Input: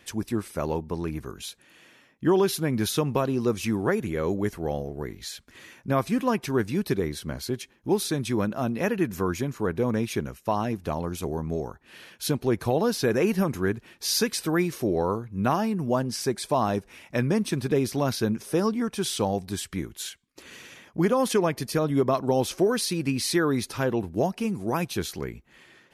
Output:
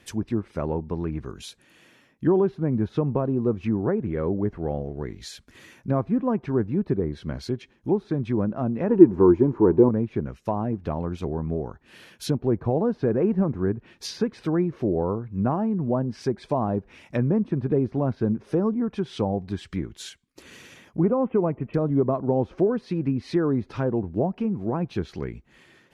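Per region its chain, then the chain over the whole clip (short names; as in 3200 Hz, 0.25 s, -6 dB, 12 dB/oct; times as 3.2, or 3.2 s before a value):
8.89–9.89 G.711 law mismatch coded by mu + small resonant body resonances 350/910 Hz, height 14 dB, ringing for 30 ms
21.03–21.74 steep low-pass 2900 Hz 72 dB/oct + notch 1700 Hz, Q 6.3
whole clip: low shelf 410 Hz +5.5 dB; treble ducked by the level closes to 1000 Hz, closed at -19 dBFS; gain -2 dB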